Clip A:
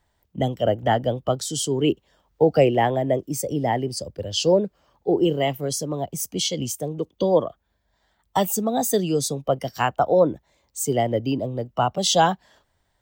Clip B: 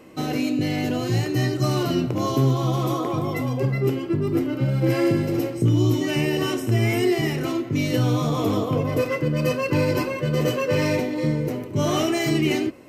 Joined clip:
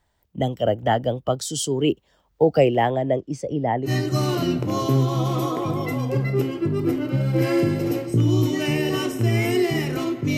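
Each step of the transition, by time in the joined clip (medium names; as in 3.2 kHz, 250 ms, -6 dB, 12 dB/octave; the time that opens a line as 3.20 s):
clip A
2.90–3.92 s: low-pass 9.2 kHz -> 1.4 kHz
3.87 s: go over to clip B from 1.35 s, crossfade 0.10 s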